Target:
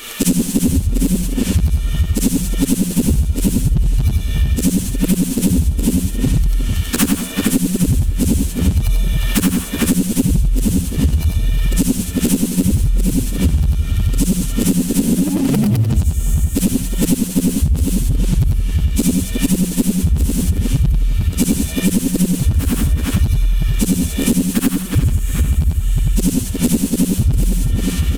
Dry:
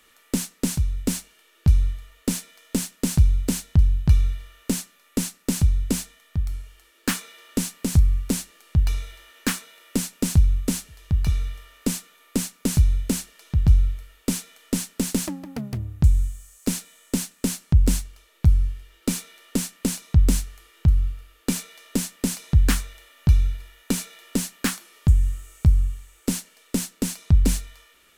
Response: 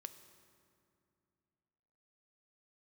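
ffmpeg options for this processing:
-filter_complex "[0:a]afftfilt=real='re':imag='-im':win_size=8192:overlap=0.75,highshelf=frequency=4900:gain=-9,asplit=2[link_01][link_02];[link_02]adelay=360,lowpass=frequency=3800:poles=1,volume=-13.5dB,asplit=2[link_03][link_04];[link_04]adelay=360,lowpass=frequency=3800:poles=1,volume=0.4,asplit=2[link_05][link_06];[link_06]adelay=360,lowpass=frequency=3800:poles=1,volume=0.4,asplit=2[link_07][link_08];[link_08]adelay=360,lowpass=frequency=3800:poles=1,volume=0.4[link_09];[link_01][link_03][link_05][link_07][link_09]amix=inputs=5:normalize=0,flanger=delay=5.1:depth=9.4:regen=-2:speed=0.76:shape=triangular,aexciter=amount=3.1:drive=2.4:freq=2600,acrossover=split=410|1000|7000[link_10][link_11][link_12][link_13];[link_10]acompressor=threshold=-29dB:ratio=4[link_14];[link_11]acompressor=threshold=-56dB:ratio=4[link_15];[link_12]acompressor=threshold=-55dB:ratio=4[link_16];[link_13]acompressor=threshold=-49dB:ratio=4[link_17];[link_14][link_15][link_16][link_17]amix=inputs=4:normalize=0,apsyclip=24.5dB,asplit=2[link_18][link_19];[link_19]asoftclip=type=tanh:threshold=-17.5dB,volume=-11dB[link_20];[link_18][link_20]amix=inputs=2:normalize=0,adynamicequalizer=threshold=0.0178:dfrequency=6400:dqfactor=1.1:tfrequency=6400:tqfactor=1.1:attack=5:release=100:ratio=0.375:range=2.5:mode=cutabove:tftype=bell,acompressor=threshold=-18dB:ratio=10,volume=6.5dB"

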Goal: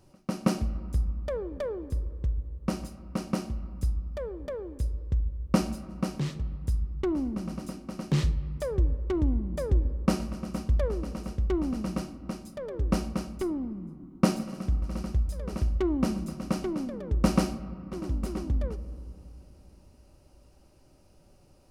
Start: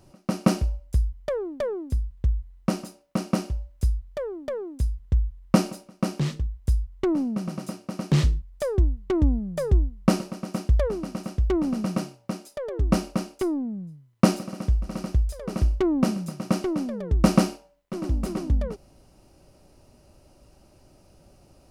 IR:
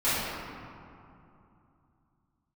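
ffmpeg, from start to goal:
-filter_complex "[0:a]bandreject=frequency=670:width=12,asplit=2[link_01][link_02];[1:a]atrim=start_sample=2205,lowpass=5100,lowshelf=frequency=75:gain=8[link_03];[link_02][link_03]afir=irnorm=-1:irlink=0,volume=-27.5dB[link_04];[link_01][link_04]amix=inputs=2:normalize=0,volume=-5dB"

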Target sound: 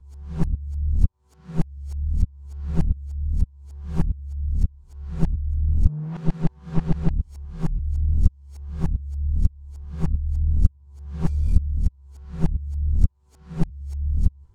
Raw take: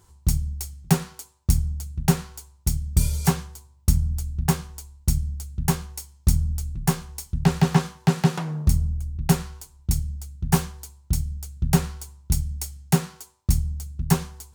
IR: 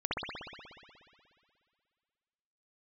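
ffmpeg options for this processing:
-af "areverse,aeval=exprs='clip(val(0),-1,0.0631)':channel_layout=same,aemphasis=mode=reproduction:type=riaa,volume=-10.5dB"

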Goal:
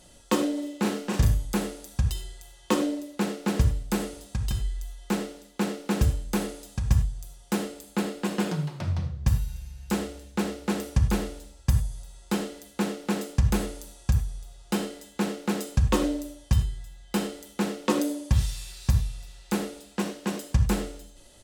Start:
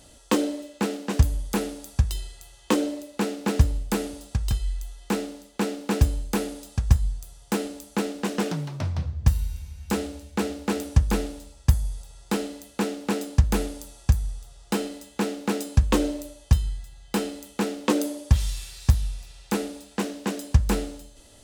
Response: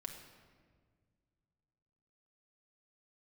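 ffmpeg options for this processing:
-filter_complex "[0:a]asplit=3[link_01][link_02][link_03];[link_01]afade=type=out:start_time=0.55:duration=0.02[link_04];[link_02]asplit=2[link_05][link_06];[link_06]adelay=38,volume=-2.5dB[link_07];[link_05][link_07]amix=inputs=2:normalize=0,afade=type=in:start_time=0.55:duration=0.02,afade=type=out:start_time=1.44:duration=0.02[link_08];[link_03]afade=type=in:start_time=1.44:duration=0.02[link_09];[link_04][link_08][link_09]amix=inputs=3:normalize=0,asettb=1/sr,asplit=3[link_10][link_11][link_12];[link_10]atrim=end=7.694[link_13];[link_11]atrim=start=7.69:end=8.87,asetpts=PTS-STARTPTS,afade=type=in:duration=0.004:curve=qsin,afade=type=out:start_time=1.176:duration=0.004:curve=qsin,bandreject=frequency=5800:width=13[link_14];[link_12]atrim=start=8.866[link_15];[link_13][link_14]acrossfade=duration=0.004:curve1=hsin:curve2=qsin[link_16];[link_16][link_15]acrossfade=duration=0.004:curve1=qsin:curve2=hsin[link_17];[1:a]atrim=start_sample=2205,atrim=end_sample=3969,asetrate=36603,aresample=44100[link_18];[link_17][link_18]afir=irnorm=-1:irlink=0,volume=1dB"

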